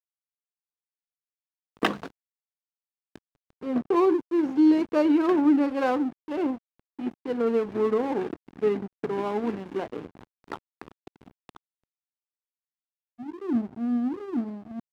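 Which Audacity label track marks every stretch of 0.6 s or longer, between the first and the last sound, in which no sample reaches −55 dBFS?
2.110000	3.160000	silence
11.570000	13.190000	silence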